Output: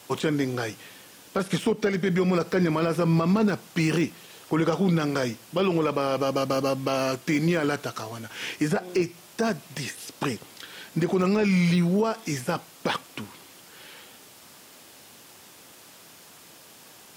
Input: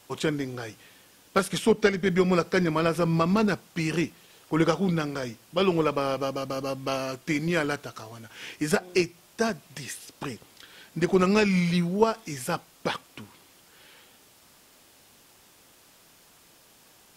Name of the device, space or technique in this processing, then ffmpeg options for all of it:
podcast mastering chain: -af "highpass=100,deesser=0.95,acompressor=threshold=-25dB:ratio=3,alimiter=limit=-21.5dB:level=0:latency=1:release=16,volume=7.5dB" -ar 48000 -c:a libmp3lame -b:a 128k

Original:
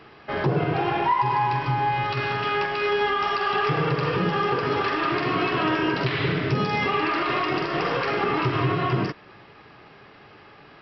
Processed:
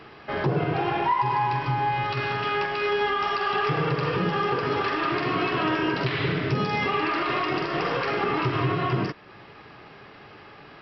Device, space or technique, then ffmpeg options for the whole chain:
parallel compression: -filter_complex "[0:a]asplit=2[a][b];[b]acompressor=threshold=-43dB:ratio=6,volume=-4dB[c];[a][c]amix=inputs=2:normalize=0,volume=-2dB"

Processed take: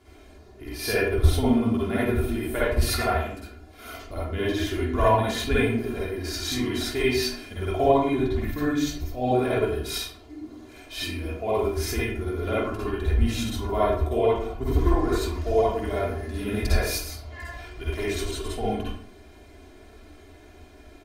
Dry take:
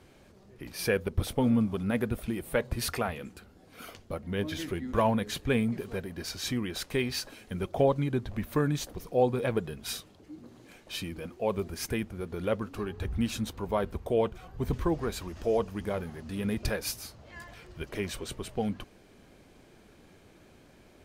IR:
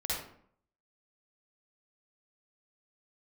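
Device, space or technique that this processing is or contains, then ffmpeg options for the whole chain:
microphone above a desk: -filter_complex "[0:a]aecho=1:1:2.9:0.8[a];[1:a]atrim=start_sample=2205[b];[a][b]afir=irnorm=-1:irlink=0,asettb=1/sr,asplit=3[c][d][e];[c]atrim=end=8.514[f];[d]atrim=start=8.51:end=9.31,asetpts=PTS-STARTPTS,afade=t=in:d=0.004:c=qsin,afade=t=out:st=0.796:d=0.004:c=qsin,equalizer=f=400:t=o:w=0.67:g=-10,equalizer=f=1k:t=o:w=0.67:g=-9,equalizer=f=10k:t=o:w=0.67:g=-8[g];[e]atrim=start=9.306[h];[f][g]acrossfade=d=0.004:c1=hsin:c2=qsin[i];[i][h]acrossfade=d=0.004:c1=qsin:c2=hsin"

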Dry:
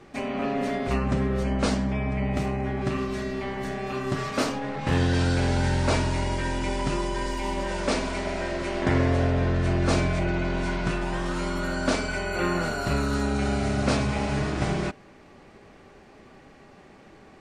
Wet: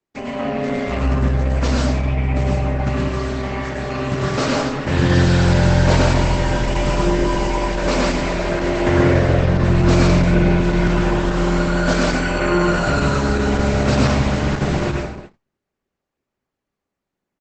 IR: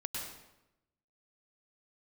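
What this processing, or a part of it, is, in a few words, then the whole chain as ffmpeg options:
speakerphone in a meeting room: -filter_complex "[0:a]asettb=1/sr,asplit=3[a][b][c];[a]atrim=end=9.984[d];[b]atrim=start=9.98:end=10.57,asetpts=PTS-STARTPTS,afade=t=in:d=0.004:c=qsin,afade=t=out:st=0.586:d=0.004:c=qsin,adynamicequalizer=threshold=0.00447:dfrequency=210:dqfactor=5.8:tfrequency=210:tqfactor=5.8:attack=5:release=100:ratio=0.375:range=2.5:mode=boostabove:tftype=bell[e];[c]atrim=start=10.566[f];[d][e]acrossfade=d=0.004:c1=hsin:c2=qsin[g];[g][f]acrossfade=d=0.004:c1=qsin:c2=hsin[h];[1:a]atrim=start_sample=2205[i];[h][i]afir=irnorm=-1:irlink=0,asplit=2[j][k];[k]adelay=230,highpass=300,lowpass=3.4k,asoftclip=type=hard:threshold=-16.5dB,volume=-23dB[l];[j][l]amix=inputs=2:normalize=0,dynaudnorm=f=340:g=17:m=3dB,agate=range=-37dB:threshold=-39dB:ratio=16:detection=peak,volume=4.5dB" -ar 48000 -c:a libopus -b:a 12k

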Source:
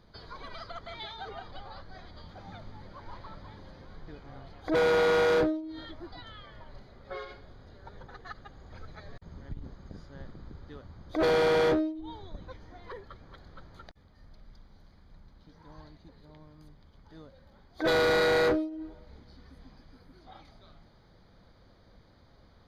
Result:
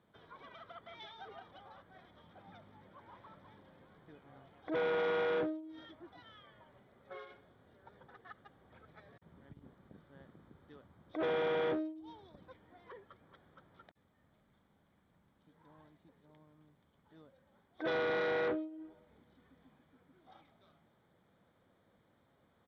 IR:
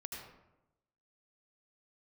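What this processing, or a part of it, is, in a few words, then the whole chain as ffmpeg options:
Bluetooth headset: -af "highpass=140,aresample=8000,aresample=44100,volume=-9dB" -ar 32000 -c:a sbc -b:a 64k

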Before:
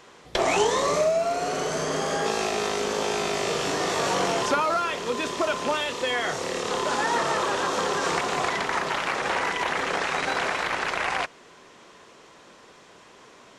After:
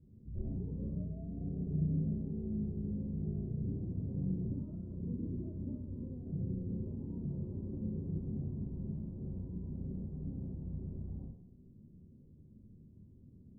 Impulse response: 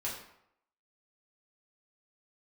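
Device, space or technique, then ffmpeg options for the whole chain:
club heard from the street: -filter_complex "[0:a]alimiter=limit=-20.5dB:level=0:latency=1,lowpass=f=180:w=0.5412,lowpass=f=180:w=1.3066[a];[1:a]atrim=start_sample=2205[b];[a][b]afir=irnorm=-1:irlink=0,volume=7.5dB"

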